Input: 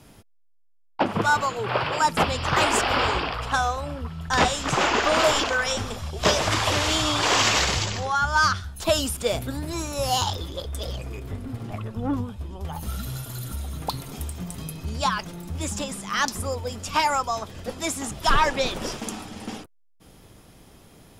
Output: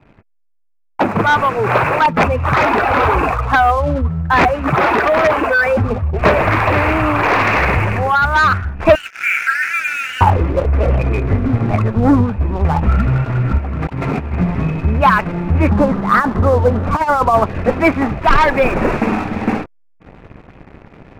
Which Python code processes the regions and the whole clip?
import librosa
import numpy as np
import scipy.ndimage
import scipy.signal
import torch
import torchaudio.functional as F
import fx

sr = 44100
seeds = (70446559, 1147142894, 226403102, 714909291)

y = fx.chain(x, sr, fx.spec_expand(power=1.6),
    fx.overflow_wrap(gain_db=13.0),
    fx.highpass(hz=51.0, slope=12), at=(2.04, 6.14))
y = fx.chain(y, sr, fx.brickwall_highpass(low_hz=1300.0),
    fx.env_flatten(amount_pct=70), at=(8.95, 10.21))
y = fx.chain(y, sr, fx.highpass(hz=71.0, slope=6),
    fx.over_compress(threshold_db=-38.0, ratio=-1.0), at=(13.58, 14.35))
y = fx.chain(y, sr, fx.lowpass(hz=1600.0, slope=24),
    fx.over_compress(threshold_db=-27.0, ratio=-0.5), at=(15.69, 17.46))
y = scipy.signal.sosfilt(scipy.signal.butter(16, 2600.0, 'lowpass', fs=sr, output='sos'), y)
y = fx.leveller(y, sr, passes=2)
y = fx.rider(y, sr, range_db=4, speed_s=0.5)
y = y * 10.0 ** (6.5 / 20.0)